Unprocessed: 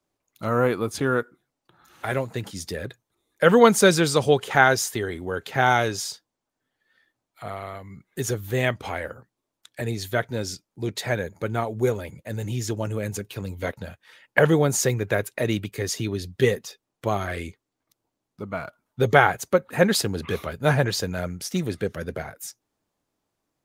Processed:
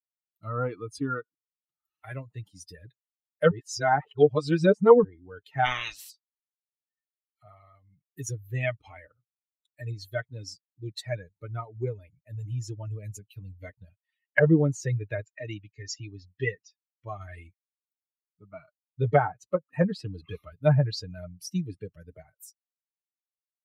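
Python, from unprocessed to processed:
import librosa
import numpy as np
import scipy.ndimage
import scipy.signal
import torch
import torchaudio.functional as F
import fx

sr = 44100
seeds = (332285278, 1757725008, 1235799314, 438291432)

y = fx.spec_clip(x, sr, under_db=28, at=(5.64, 6.09), fade=0.02)
y = fx.cheby_ripple(y, sr, hz=7300.0, ripple_db=3, at=(15.23, 17.19), fade=0.02)
y = fx.edit(y, sr, fx.reverse_span(start_s=3.51, length_s=1.53), tone=tone)
y = fx.bin_expand(y, sr, power=2.0)
y = fx.env_lowpass_down(y, sr, base_hz=890.0, full_db=-18.0)
y = y + 0.54 * np.pad(y, (int(6.6 * sr / 1000.0), 0))[:len(y)]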